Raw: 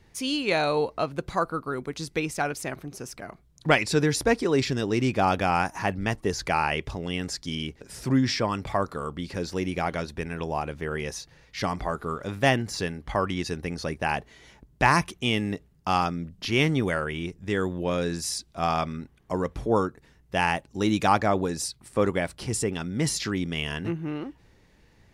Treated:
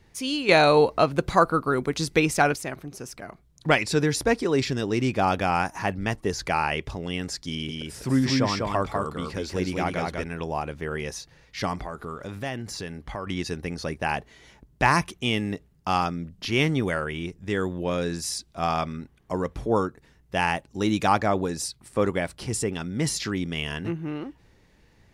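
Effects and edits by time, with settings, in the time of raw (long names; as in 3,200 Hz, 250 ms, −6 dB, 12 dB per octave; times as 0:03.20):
0:00.49–0:02.56: clip gain +7 dB
0:07.49–0:10.24: single-tap delay 197 ms −3 dB
0:11.81–0:13.27: downward compressor 2.5 to 1, threshold −32 dBFS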